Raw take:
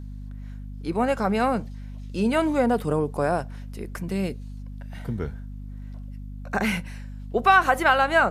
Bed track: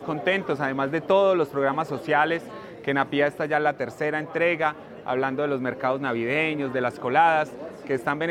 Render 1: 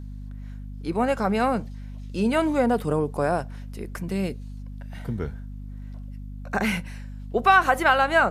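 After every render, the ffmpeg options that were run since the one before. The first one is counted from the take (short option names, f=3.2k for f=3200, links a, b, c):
-af anull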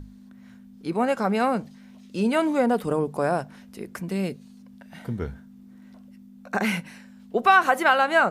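-af "bandreject=f=50:t=h:w=6,bandreject=f=100:t=h:w=6,bandreject=f=150:t=h:w=6"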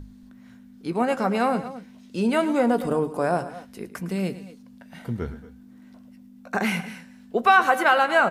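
-filter_complex "[0:a]asplit=2[a][b];[b]adelay=17,volume=-14dB[c];[a][c]amix=inputs=2:normalize=0,aecho=1:1:108|229|233:0.188|0.1|0.112"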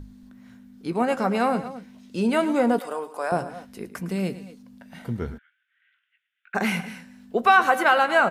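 -filter_complex "[0:a]asettb=1/sr,asplit=3[a][b][c];[a]atrim=end=2.794[d];[b]atrim=start=2.79:end=3.32,asetpts=PTS-STARTPTS,afade=t=in:d=0.004:c=qsin,afade=t=out:st=0.526:d=0.004:c=qsin,highpass=690[e];[c]atrim=start=3.316[f];[d][e]acrossfade=d=0.004:c1=hsin:c2=qsin[g];[g][f]acrossfade=d=0.004:c1=qsin:c2=hsin,asplit=3[h][i][j];[h]afade=t=out:st=5.37:d=0.02[k];[i]asuperpass=centerf=2200:order=12:qfactor=1.1,afade=t=in:st=5.37:d=0.02,afade=t=out:st=6.54:d=0.02[l];[j]afade=t=in:st=6.54:d=0.02[m];[k][l][m]amix=inputs=3:normalize=0"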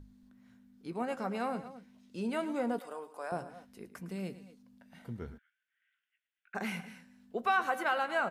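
-af "volume=-12.5dB"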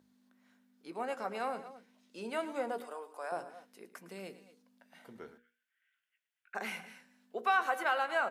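-af "highpass=370,bandreject=f=60:t=h:w=6,bandreject=f=120:t=h:w=6,bandreject=f=180:t=h:w=6,bandreject=f=240:t=h:w=6,bandreject=f=300:t=h:w=6,bandreject=f=360:t=h:w=6,bandreject=f=420:t=h:w=6,bandreject=f=480:t=h:w=6"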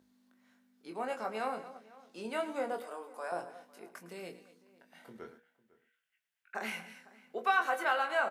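-filter_complex "[0:a]asplit=2[a][b];[b]adelay=23,volume=-6.5dB[c];[a][c]amix=inputs=2:normalize=0,asplit=2[d][e];[e]adelay=501.5,volume=-21dB,highshelf=f=4k:g=-11.3[f];[d][f]amix=inputs=2:normalize=0"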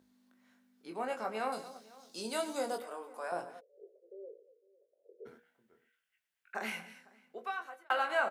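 -filter_complex "[0:a]asettb=1/sr,asplit=3[a][b][c];[a]atrim=end=1.524[d];[b]atrim=start=1.52:end=2.78,asetpts=PTS-STARTPTS,afade=t=in:d=0.004:c=qsin,afade=t=out:st=1.256:d=0.004:c=qsin,highshelf=f=3.3k:t=q:w=1.5:g=11[e];[c]atrim=start=2.776[f];[d][e]acrossfade=d=0.004:c1=hsin:c2=qsin[g];[g][f]acrossfade=d=0.004:c1=qsin:c2=hsin,asplit=3[h][i][j];[h]afade=t=out:st=3.59:d=0.02[k];[i]asuperpass=centerf=470:order=8:qfactor=2.4,afade=t=in:st=3.59:d=0.02,afade=t=out:st=5.25:d=0.02[l];[j]afade=t=in:st=5.25:d=0.02[m];[k][l][m]amix=inputs=3:normalize=0,asplit=2[n][o];[n]atrim=end=7.9,asetpts=PTS-STARTPTS,afade=t=out:st=6.69:d=1.21[p];[o]atrim=start=7.9,asetpts=PTS-STARTPTS,afade=t=in:d=0.004:c=hsin[q];[p][q]concat=n=2:v=0:a=1"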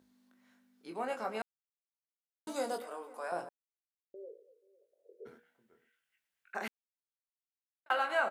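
-filter_complex "[0:a]asplit=7[a][b][c][d][e][f][g];[a]atrim=end=1.42,asetpts=PTS-STARTPTS,afade=t=out:st=1.416:d=0.004:c=hsin[h];[b]atrim=start=1.42:end=2.47,asetpts=PTS-STARTPTS,volume=0[i];[c]atrim=start=2.47:end=3.49,asetpts=PTS-STARTPTS,afade=t=in:d=0.004:c=hsin,afade=t=out:st=1.016:d=0.004:c=hsin[j];[d]atrim=start=3.49:end=4.14,asetpts=PTS-STARTPTS,volume=0[k];[e]atrim=start=4.14:end=6.68,asetpts=PTS-STARTPTS,afade=t=in:d=0.004:c=hsin,afade=t=out:st=2.536:d=0.004:c=hsin[l];[f]atrim=start=6.68:end=7.86,asetpts=PTS-STARTPTS,volume=0[m];[g]atrim=start=7.86,asetpts=PTS-STARTPTS,afade=t=in:d=0.004:c=hsin[n];[h][i][j][k][l][m][n]concat=n=7:v=0:a=1"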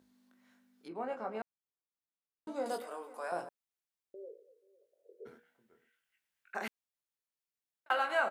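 -filter_complex "[0:a]asettb=1/sr,asplit=3[a][b][c];[a]atrim=end=0.884[d];[b]atrim=start=0.88:end=2.66,asetpts=PTS-STARTPTS,afade=t=in:d=0.004:c=qsin,afade=t=out:st=1.776:d=0.004:c=qsin,lowpass=f=1k:p=1[e];[c]atrim=start=2.656[f];[d][e]acrossfade=d=0.004:c1=hsin:c2=qsin[g];[g][f]acrossfade=d=0.004:c1=qsin:c2=hsin"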